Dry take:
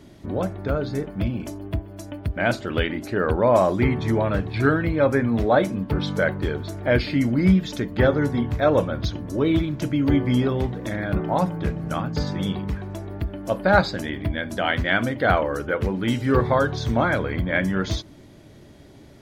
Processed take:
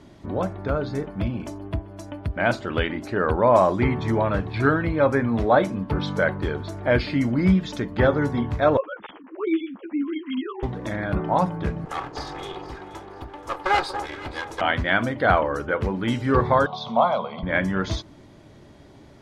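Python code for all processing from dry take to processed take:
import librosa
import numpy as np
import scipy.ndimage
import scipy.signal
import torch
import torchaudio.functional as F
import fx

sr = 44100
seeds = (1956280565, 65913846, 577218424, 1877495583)

y = fx.chain(x, sr, fx.sine_speech(),
    fx.low_shelf(hz=360.0, db=-6.5),
    fx.ensemble(), at=(8.77, 10.63))
y = fx.chain(y, sr, fx.lower_of_two(delay_ms=2.4),
    fx.low_shelf(hz=290.0, db=-11.0),
    fx.echo_alternate(ms=239, hz=1200.0, feedback_pct=55, wet_db=-10.5), at=(11.85, 14.61))
y = fx.chain(y, sr, fx.cabinet(low_hz=180.0, low_slope=24, high_hz=4800.0, hz=(220.0, 400.0, 700.0, 1100.0, 3500.0), db=(9, -7, 6, 7, 8)),
    fx.fixed_phaser(hz=710.0, stages=4), at=(16.66, 17.43))
y = scipy.signal.sosfilt(scipy.signal.bessel(2, 8300.0, 'lowpass', norm='mag', fs=sr, output='sos'), y)
y = fx.peak_eq(y, sr, hz=1000.0, db=5.5, octaves=0.97)
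y = y * 10.0 ** (-1.5 / 20.0)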